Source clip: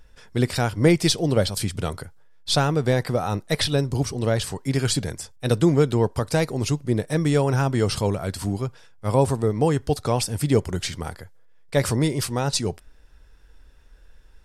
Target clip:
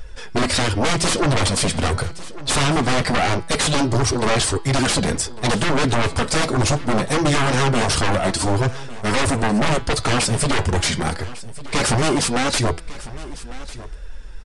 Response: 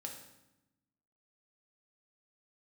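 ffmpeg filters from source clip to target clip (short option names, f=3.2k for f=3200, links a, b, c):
-filter_complex "[0:a]flanger=delay=1.4:depth=4.4:regen=-10:speed=1.5:shape=triangular,acontrast=58,aeval=exprs='(tanh(5.62*val(0)+0.55)-tanh(0.55))/5.62':c=same,aeval=exprs='0.562*sin(PI/2*8.91*val(0)/0.562)':c=same,flanger=delay=1.6:depth=7.6:regen=-60:speed=0.23:shape=triangular,bandreject=f=165.6:t=h:w=4,bandreject=f=331.2:t=h:w=4,bandreject=f=496.8:t=h:w=4,bandreject=f=662.4:t=h:w=4,bandreject=f=828:t=h:w=4,bandreject=f=993.6:t=h:w=4,bandreject=f=1.1592k:t=h:w=4,bandreject=f=1.3248k:t=h:w=4,bandreject=f=1.4904k:t=h:w=4,bandreject=f=1.656k:t=h:w=4,bandreject=f=1.8216k:t=h:w=4,bandreject=f=1.9872k:t=h:w=4,bandreject=f=2.1528k:t=h:w=4,bandreject=f=2.3184k:t=h:w=4,bandreject=f=2.484k:t=h:w=4,bandreject=f=2.6496k:t=h:w=4,bandreject=f=2.8152k:t=h:w=4,bandreject=f=2.9808k:t=h:w=4,bandreject=f=3.1464k:t=h:w=4,bandreject=f=3.312k:t=h:w=4,bandreject=f=3.4776k:t=h:w=4,bandreject=f=3.6432k:t=h:w=4,bandreject=f=3.8088k:t=h:w=4,bandreject=f=3.9744k:t=h:w=4,bandreject=f=4.14k:t=h:w=4,bandreject=f=4.3056k:t=h:w=4,bandreject=f=4.4712k:t=h:w=4,bandreject=f=4.6368k:t=h:w=4,bandreject=f=4.8024k:t=h:w=4,bandreject=f=4.968k:t=h:w=4,asplit=2[a][b];[b]aecho=0:1:1150:0.133[c];[a][c]amix=inputs=2:normalize=0,aresample=22050,aresample=44100,volume=-5.5dB"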